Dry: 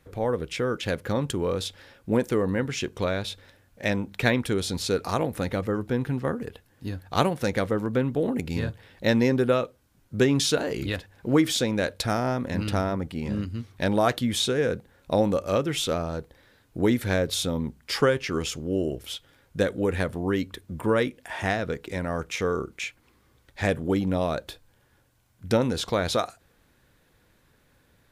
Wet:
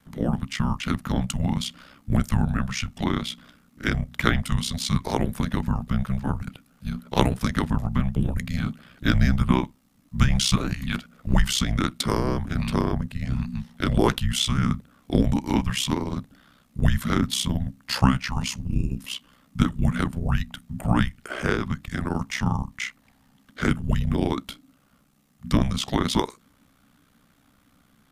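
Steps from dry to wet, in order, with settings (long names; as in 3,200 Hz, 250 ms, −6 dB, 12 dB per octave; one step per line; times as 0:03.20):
ring modulation 32 Hz
frequency shifter −300 Hz
level +5 dB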